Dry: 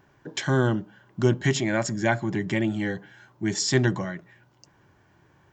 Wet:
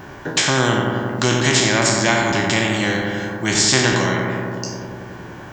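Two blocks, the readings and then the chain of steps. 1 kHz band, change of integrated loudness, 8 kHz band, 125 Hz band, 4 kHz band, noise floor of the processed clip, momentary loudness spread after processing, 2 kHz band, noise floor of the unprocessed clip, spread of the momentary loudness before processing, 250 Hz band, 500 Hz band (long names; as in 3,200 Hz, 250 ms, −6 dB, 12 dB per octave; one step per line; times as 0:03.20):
+12.0 dB, +8.0 dB, +13.5 dB, +4.5 dB, +14.5 dB, −36 dBFS, 14 LU, +11.5 dB, −61 dBFS, 12 LU, +5.5 dB, +6.5 dB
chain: peak hold with a decay on every bin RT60 0.44 s
feedback echo with a low-pass in the loop 91 ms, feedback 74%, low-pass 1,700 Hz, level −4.5 dB
every bin compressed towards the loudest bin 2 to 1
level +5.5 dB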